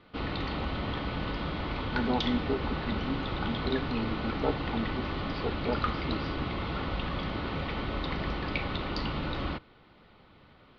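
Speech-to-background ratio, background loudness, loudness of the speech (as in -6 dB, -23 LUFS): -2.0 dB, -33.5 LUFS, -35.5 LUFS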